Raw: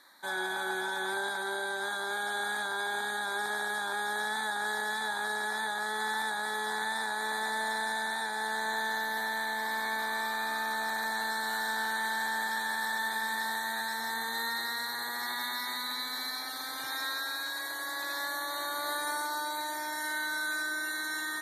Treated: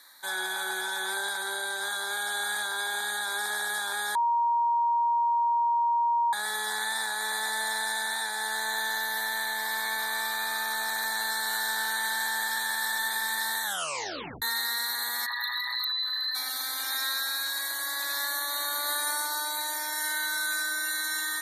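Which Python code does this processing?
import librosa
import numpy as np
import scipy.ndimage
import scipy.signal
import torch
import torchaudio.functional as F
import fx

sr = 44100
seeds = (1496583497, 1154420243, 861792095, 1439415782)

y = fx.envelope_sharpen(x, sr, power=3.0, at=(15.25, 16.34), fade=0.02)
y = fx.edit(y, sr, fx.bleep(start_s=4.15, length_s=2.18, hz=941.0, db=-21.5),
    fx.tape_stop(start_s=13.63, length_s=0.79), tone=tone)
y = fx.tilt_eq(y, sr, slope=3.0)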